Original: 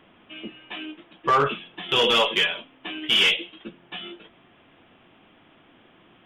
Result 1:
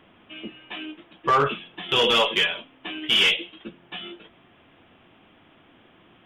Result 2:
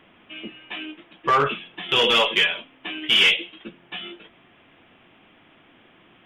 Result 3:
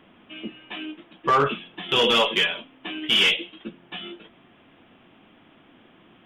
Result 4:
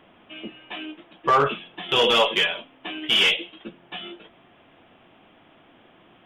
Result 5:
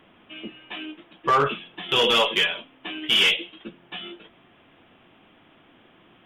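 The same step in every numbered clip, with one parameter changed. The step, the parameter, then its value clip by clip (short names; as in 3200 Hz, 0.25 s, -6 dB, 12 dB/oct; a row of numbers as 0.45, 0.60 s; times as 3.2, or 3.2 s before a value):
bell, frequency: 80, 2200, 230, 680, 13000 Hz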